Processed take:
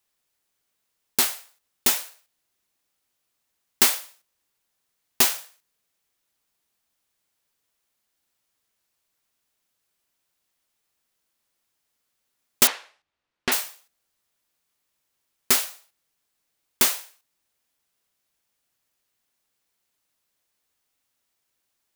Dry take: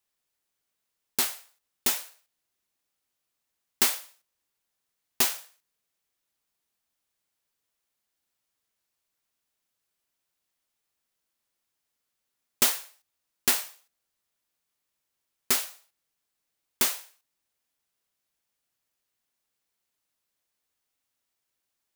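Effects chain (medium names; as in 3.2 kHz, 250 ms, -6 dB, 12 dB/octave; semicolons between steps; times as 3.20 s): 12.67–13.52 s: low-pass 3.1 kHz 12 dB/octave; trim +5 dB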